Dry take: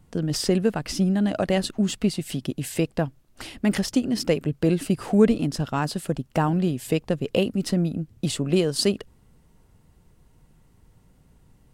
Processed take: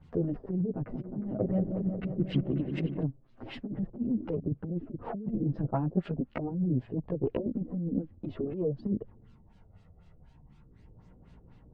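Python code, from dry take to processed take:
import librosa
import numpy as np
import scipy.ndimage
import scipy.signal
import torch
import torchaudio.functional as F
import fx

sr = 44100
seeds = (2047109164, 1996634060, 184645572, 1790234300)

y = fx.env_lowpass_down(x, sr, base_hz=310.0, full_db=-20.0)
y = fx.over_compress(y, sr, threshold_db=-25.0, ratio=-0.5)
y = fx.tube_stage(y, sr, drive_db=12.0, bias=0.35)
y = fx.chorus_voices(y, sr, voices=2, hz=0.22, base_ms=13, depth_ms=4.3, mix_pct=65)
y = fx.filter_lfo_lowpass(y, sr, shape='sine', hz=4.0, low_hz=440.0, high_hz=4300.0, q=1.3)
y = fx.echo_opening(y, sr, ms=180, hz=750, octaves=1, feedback_pct=70, wet_db=-6, at=(0.71, 3.03))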